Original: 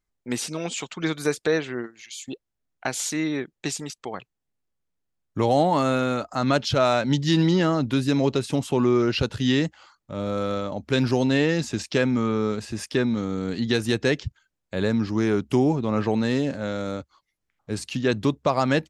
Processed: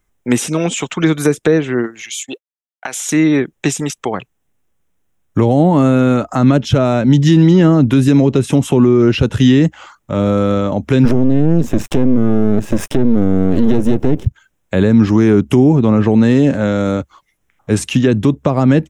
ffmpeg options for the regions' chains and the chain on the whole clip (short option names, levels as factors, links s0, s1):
-filter_complex "[0:a]asettb=1/sr,asplit=3[s0][s1][s2];[s0]atrim=end=2.234[s3];[s1]atrim=start=2.23:end=3.09,asetpts=PTS-STARTPTS,afade=t=in:d=0.004:c=qsin,afade=t=out:st=0.856:d=0.004:c=qsin,highpass=f=770:p=1,acompressor=threshold=0.0224:ratio=6:attack=3.2:release=140:knee=1:detection=peak,agate=range=0.0224:threshold=0.00501:ratio=3:release=100:detection=peak[s4];[s2]atrim=start=3.086[s5];[s3][s4]acrossfade=d=0.004:c1=hsin:c2=qsin[s6];[s6][s5]acrossfade=d=0.004:c1=qsin:c2=hsin,asettb=1/sr,asplit=3[s7][s8][s9];[s7]atrim=end=11.054[s10];[s8]atrim=start=11.05:end=14.26,asetpts=PTS-STARTPTS,afade=t=in:d=0.004:c=qsin,afade=t=out:st=3.206:d=0.004:c=qsin,equalizer=f=340:w=0.36:g=12,aeval=exprs='max(val(0),0)':c=same,acrusher=bits=7:dc=4:mix=0:aa=0.000001[s11];[s9]atrim=start=14.256[s12];[s10][s11]acrossfade=d=0.004:c1=hsin:c2=qsin[s13];[s13][s12]acrossfade=d=0.004:c1=qsin:c2=hsin,equalizer=f=4500:t=o:w=0.34:g=-13.5,acrossover=split=390[s14][s15];[s15]acompressor=threshold=0.02:ratio=6[s16];[s14][s16]amix=inputs=2:normalize=0,alimiter=level_in=6.68:limit=0.891:release=50:level=0:latency=1,volume=0.891"